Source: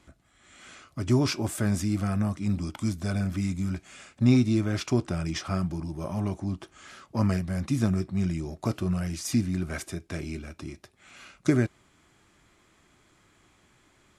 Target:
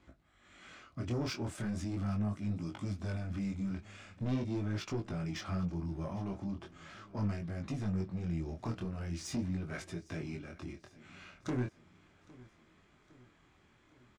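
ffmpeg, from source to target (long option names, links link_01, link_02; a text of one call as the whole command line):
ffmpeg -i in.wav -filter_complex "[0:a]asplit=2[link_01][link_02];[link_02]acompressor=threshold=-31dB:ratio=6,volume=-1dB[link_03];[link_01][link_03]amix=inputs=2:normalize=0,asoftclip=type=tanh:threshold=-20dB,flanger=delay=18.5:depth=7.3:speed=0.4,adynamicsmooth=sensitivity=3.5:basefreq=5300,aecho=1:1:809|1618|2427|3236:0.0841|0.0454|0.0245|0.0132,volume=-6.5dB" out.wav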